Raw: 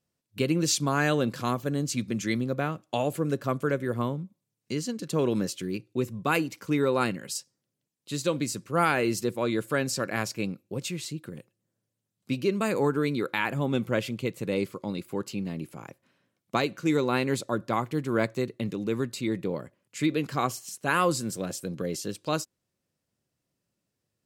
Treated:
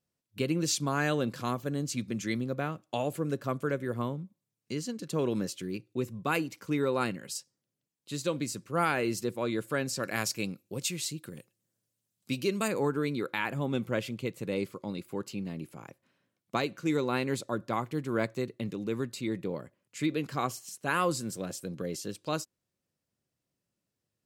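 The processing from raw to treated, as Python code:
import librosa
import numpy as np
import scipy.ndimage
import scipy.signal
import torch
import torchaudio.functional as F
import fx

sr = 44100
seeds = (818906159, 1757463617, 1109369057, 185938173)

y = fx.high_shelf(x, sr, hz=3200.0, db=10.0, at=(10.03, 12.68))
y = y * librosa.db_to_amplitude(-4.0)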